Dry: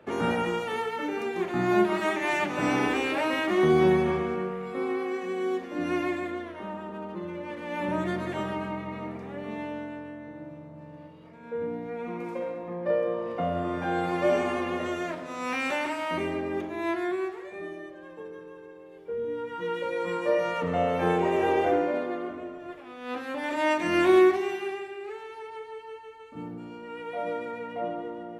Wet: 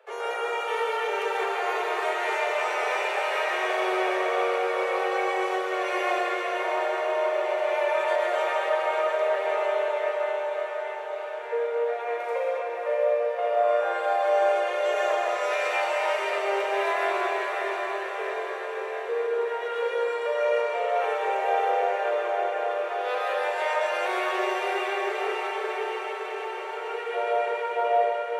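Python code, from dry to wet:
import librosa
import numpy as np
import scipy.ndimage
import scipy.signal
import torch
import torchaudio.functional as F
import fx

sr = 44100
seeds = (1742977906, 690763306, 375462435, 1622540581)

p1 = scipy.signal.sosfilt(scipy.signal.butter(16, 410.0, 'highpass', fs=sr, output='sos'), x)
p2 = fx.rider(p1, sr, range_db=5, speed_s=0.5)
p3 = p2 + fx.echo_diffused(p2, sr, ms=594, feedback_pct=69, wet_db=-5.0, dry=0)
y = fx.rev_freeverb(p3, sr, rt60_s=2.0, hf_ratio=0.75, predelay_ms=90, drr_db=-1.0)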